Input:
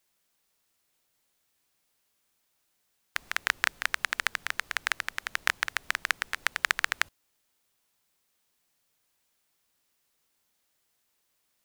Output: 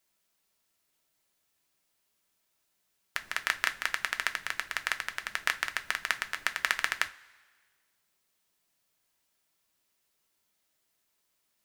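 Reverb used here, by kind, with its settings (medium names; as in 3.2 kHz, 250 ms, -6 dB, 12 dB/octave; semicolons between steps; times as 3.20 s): two-slope reverb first 0.24 s, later 1.6 s, from -20 dB, DRR 7 dB; trim -2.5 dB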